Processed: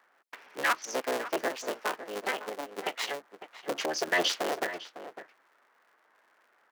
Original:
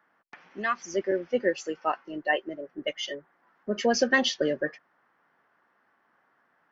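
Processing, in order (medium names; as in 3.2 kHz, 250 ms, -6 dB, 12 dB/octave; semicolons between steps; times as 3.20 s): cycle switcher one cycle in 3, inverted; high-pass 390 Hz 12 dB/octave; 1.48–4.08 s: compression 6:1, threshold -30 dBFS, peak gain reduction 11 dB; peak limiter -18.5 dBFS, peak gain reduction 8.5 dB; echo from a far wall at 95 m, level -12 dB; trim +2 dB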